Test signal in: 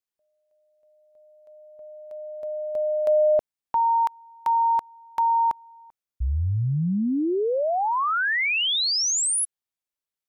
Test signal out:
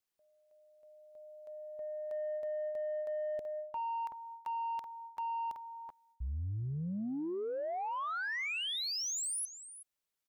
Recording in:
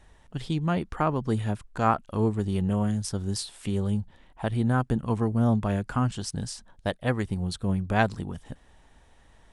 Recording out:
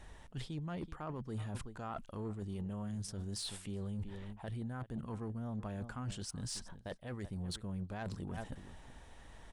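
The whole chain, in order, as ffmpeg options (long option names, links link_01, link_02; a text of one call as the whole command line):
ffmpeg -i in.wav -filter_complex "[0:a]asplit=2[link_01][link_02];[link_02]adelay=379,volume=-22dB,highshelf=frequency=4000:gain=-8.53[link_03];[link_01][link_03]amix=inputs=2:normalize=0,areverse,acompressor=threshold=-35dB:ratio=16:attack=0.18:release=228:knee=1:detection=peak,areverse,asoftclip=type=tanh:threshold=-33dB,volume=2dB" out.wav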